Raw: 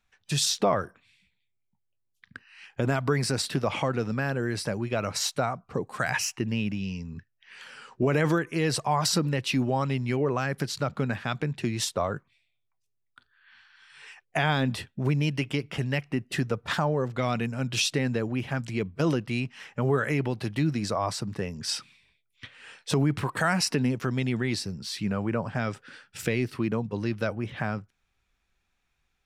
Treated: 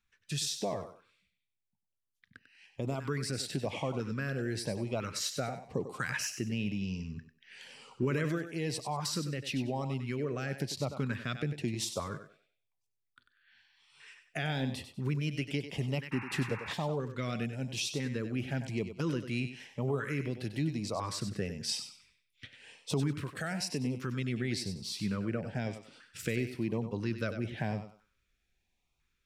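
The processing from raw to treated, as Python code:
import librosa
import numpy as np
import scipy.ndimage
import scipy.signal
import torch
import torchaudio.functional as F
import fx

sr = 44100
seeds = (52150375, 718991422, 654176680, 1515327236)

y = fx.rider(x, sr, range_db=4, speed_s=0.5)
y = fx.echo_thinned(y, sr, ms=96, feedback_pct=28, hz=270.0, wet_db=-9)
y = fx.filter_lfo_notch(y, sr, shape='saw_up', hz=1.0, low_hz=630.0, high_hz=1800.0, q=1.1)
y = fx.spec_paint(y, sr, seeds[0], shape='noise', start_s=16.11, length_s=0.63, low_hz=770.0, high_hz=2800.0, level_db=-38.0)
y = y * librosa.db_to_amplitude(-6.5)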